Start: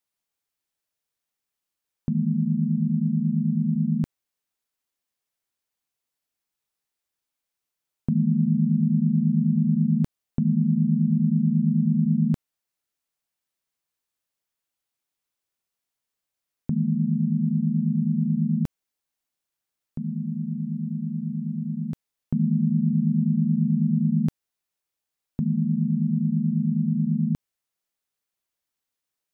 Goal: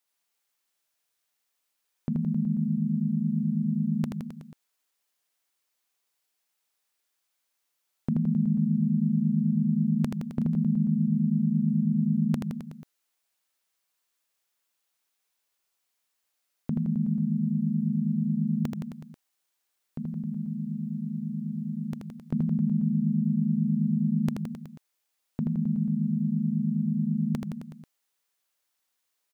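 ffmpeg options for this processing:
ffmpeg -i in.wav -af "lowshelf=frequency=290:gain=-12,aecho=1:1:80|168|264.8|371.3|488.4:0.631|0.398|0.251|0.158|0.1,volume=4.5dB" out.wav

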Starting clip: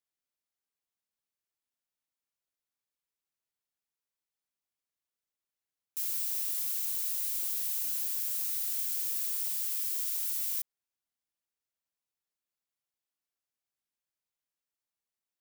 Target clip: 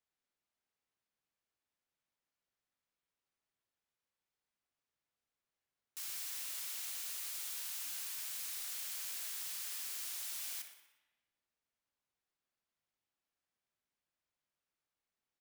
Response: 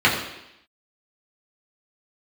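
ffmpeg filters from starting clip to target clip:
-filter_complex "[0:a]aemphasis=mode=reproduction:type=50kf,aecho=1:1:61|122|183|244|305|366:0.282|0.147|0.0762|0.0396|0.0206|0.0107,asplit=2[link_01][link_02];[1:a]atrim=start_sample=2205,asetrate=34398,aresample=44100,adelay=81[link_03];[link_02][link_03]afir=irnorm=-1:irlink=0,volume=-31dB[link_04];[link_01][link_04]amix=inputs=2:normalize=0,volume=3dB"

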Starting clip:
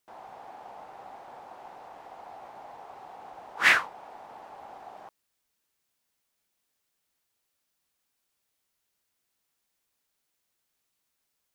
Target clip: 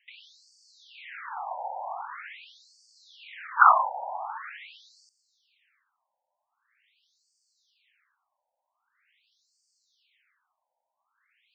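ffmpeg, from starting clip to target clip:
ffmpeg -i in.wav -af "equalizer=frequency=2200:width=0.58:gain=14.5,afftfilt=real='re*between(b*sr/1024,690*pow(6300/690,0.5+0.5*sin(2*PI*0.44*pts/sr))/1.41,690*pow(6300/690,0.5+0.5*sin(2*PI*0.44*pts/sr))*1.41)':imag='im*between(b*sr/1024,690*pow(6300/690,0.5+0.5*sin(2*PI*0.44*pts/sr))/1.41,690*pow(6300/690,0.5+0.5*sin(2*PI*0.44*pts/sr))*1.41)':win_size=1024:overlap=0.75,volume=7dB" out.wav

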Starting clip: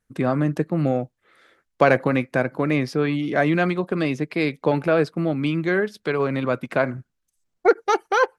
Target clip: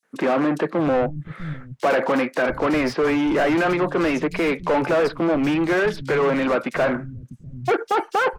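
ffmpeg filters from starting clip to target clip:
ffmpeg -i in.wav -filter_complex "[0:a]asplit=2[link_01][link_02];[link_02]highpass=frequency=720:poles=1,volume=33dB,asoftclip=type=tanh:threshold=-3.5dB[link_03];[link_01][link_03]amix=inputs=2:normalize=0,lowpass=frequency=1400:poles=1,volume=-6dB,acrossover=split=160|4200[link_04][link_05][link_06];[link_05]adelay=30[link_07];[link_04]adelay=680[link_08];[link_08][link_07][link_06]amix=inputs=3:normalize=0,volume=-7dB" out.wav

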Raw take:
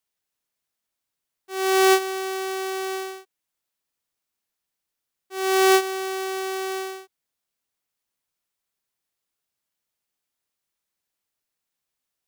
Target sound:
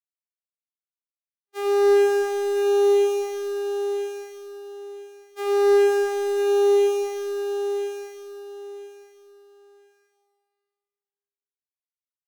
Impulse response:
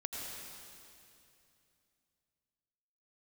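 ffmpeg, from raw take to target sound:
-filter_complex "[0:a]agate=range=-55dB:threshold=-28dB:ratio=16:detection=peak,highpass=150,asplit=2[link_01][link_02];[link_02]acompressor=threshold=-27dB:ratio=6,volume=3dB[link_03];[link_01][link_03]amix=inputs=2:normalize=0,asetrate=46722,aresample=44100,atempo=0.943874,bandreject=frequency=930:width=8.2[link_04];[1:a]atrim=start_sample=2205,asetrate=66150,aresample=44100[link_05];[link_04][link_05]afir=irnorm=-1:irlink=0,acrossover=split=430|3500[link_06][link_07][link_08];[link_07]asoftclip=type=tanh:threshold=-26dB[link_09];[link_06][link_09][link_08]amix=inputs=3:normalize=0,acrossover=split=2700[link_10][link_11];[link_11]acompressor=threshold=-40dB:ratio=4:attack=1:release=60[link_12];[link_10][link_12]amix=inputs=2:normalize=0,aecho=1:1:993|1986|2979:0.562|0.141|0.0351"

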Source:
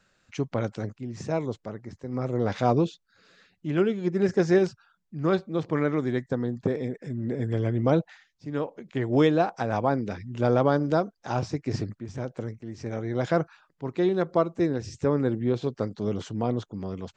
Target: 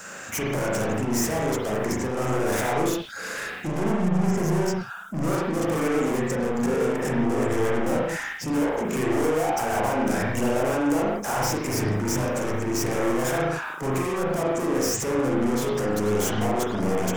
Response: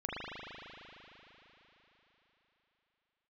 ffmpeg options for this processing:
-filter_complex "[0:a]asplit=3[link_01][link_02][link_03];[link_01]afade=type=out:start_time=3.66:duration=0.02[link_04];[link_02]asubboost=boost=8.5:cutoff=200,afade=type=in:start_time=3.66:duration=0.02,afade=type=out:start_time=4.66:duration=0.02[link_05];[link_03]afade=type=in:start_time=4.66:duration=0.02[link_06];[link_04][link_05][link_06]amix=inputs=3:normalize=0,acompressor=threshold=-31dB:ratio=6,asplit=2[link_07][link_08];[link_08]highpass=frequency=720:poles=1,volume=39dB,asoftclip=type=tanh:threshold=-19dB[link_09];[link_07][link_09]amix=inputs=2:normalize=0,lowpass=frequency=1400:poles=1,volume=-6dB,aexciter=amount=10.5:drive=5.7:freq=5900[link_10];[1:a]atrim=start_sample=2205,afade=type=out:start_time=0.23:duration=0.01,atrim=end_sample=10584[link_11];[link_10][link_11]afir=irnorm=-1:irlink=0"

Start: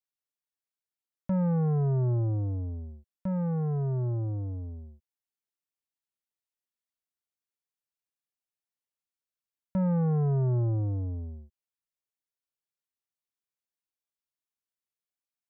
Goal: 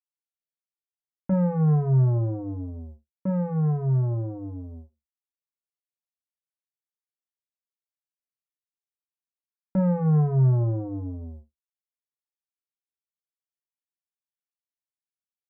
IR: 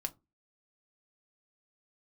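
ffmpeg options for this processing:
-filter_complex "[0:a]agate=range=-26dB:threshold=-43dB:ratio=16:detection=peak[link_01];[1:a]atrim=start_sample=2205,atrim=end_sample=3528[link_02];[link_01][link_02]afir=irnorm=-1:irlink=0,volume=4dB"

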